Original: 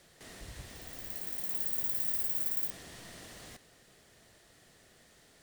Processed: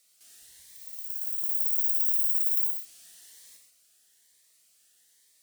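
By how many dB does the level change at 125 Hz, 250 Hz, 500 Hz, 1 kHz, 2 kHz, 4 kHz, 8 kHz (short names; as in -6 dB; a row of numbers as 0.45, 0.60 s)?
under -25 dB, under -20 dB, under -20 dB, under -15 dB, under -10 dB, n/a, +3.0 dB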